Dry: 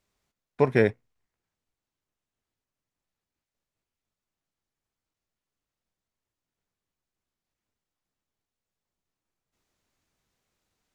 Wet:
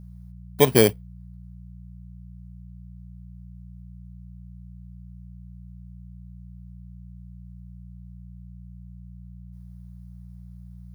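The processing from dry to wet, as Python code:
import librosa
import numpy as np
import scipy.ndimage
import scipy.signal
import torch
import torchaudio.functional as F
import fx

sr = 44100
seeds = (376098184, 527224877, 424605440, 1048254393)

y = fx.bit_reversed(x, sr, seeds[0], block=16)
y = fx.dmg_buzz(y, sr, base_hz=60.0, harmonics=3, level_db=-47.0, tilt_db=-3, odd_only=False)
y = y * librosa.db_to_amplitude(4.5)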